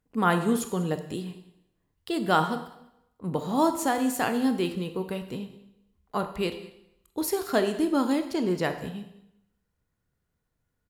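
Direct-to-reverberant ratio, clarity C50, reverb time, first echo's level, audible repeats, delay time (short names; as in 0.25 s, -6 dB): 8.0 dB, 10.0 dB, 0.80 s, -21.0 dB, 1, 0.196 s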